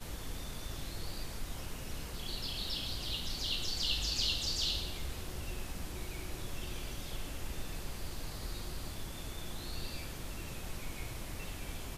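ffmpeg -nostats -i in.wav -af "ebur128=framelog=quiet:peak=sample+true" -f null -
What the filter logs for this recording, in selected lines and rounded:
Integrated loudness:
  I:         -38.9 LUFS
  Threshold: -48.9 LUFS
Loudness range:
  LRA:         8.9 LU
  Threshold: -58.2 LUFS
  LRA low:   -43.4 LUFS
  LRA high:  -34.5 LUFS
Sample peak:
  Peak:      -19.7 dBFS
True peak:
  Peak:      -19.7 dBFS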